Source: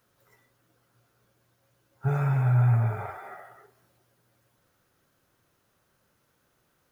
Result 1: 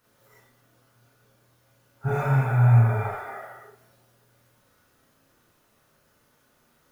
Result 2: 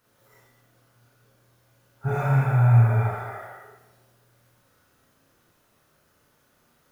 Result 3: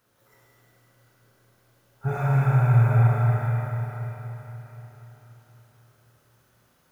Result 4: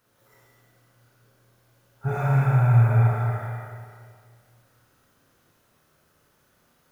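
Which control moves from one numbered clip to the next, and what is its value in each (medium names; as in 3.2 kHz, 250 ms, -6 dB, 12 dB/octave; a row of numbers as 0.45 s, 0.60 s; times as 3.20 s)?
Schroeder reverb, RT60: 0.35 s, 0.78 s, 4.2 s, 2 s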